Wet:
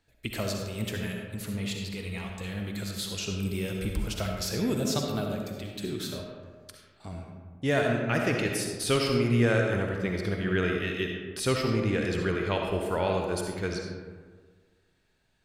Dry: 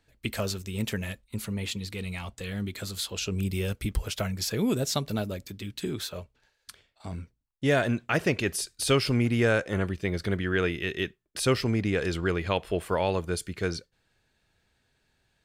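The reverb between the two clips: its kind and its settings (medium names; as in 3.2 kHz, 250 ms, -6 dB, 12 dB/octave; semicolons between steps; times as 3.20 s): algorithmic reverb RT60 1.6 s, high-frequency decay 0.45×, pre-delay 25 ms, DRR 1 dB; trim -3 dB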